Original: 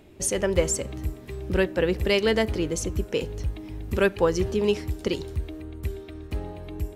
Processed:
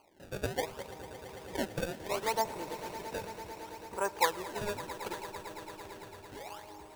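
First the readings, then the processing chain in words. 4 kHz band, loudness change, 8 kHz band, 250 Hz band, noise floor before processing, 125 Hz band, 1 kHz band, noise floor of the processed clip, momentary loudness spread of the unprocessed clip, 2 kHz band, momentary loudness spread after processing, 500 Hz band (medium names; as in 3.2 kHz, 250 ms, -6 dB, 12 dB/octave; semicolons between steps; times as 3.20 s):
-9.0 dB, -11.0 dB, -12.5 dB, -15.5 dB, -44 dBFS, -17.0 dB, +1.5 dB, -52 dBFS, 13 LU, -8.5 dB, 15 LU, -13.0 dB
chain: band-pass filter 920 Hz, Q 7.7; decimation with a swept rate 24×, swing 160% 0.69 Hz; echo with a slow build-up 112 ms, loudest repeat 5, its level -17 dB; trim +7.5 dB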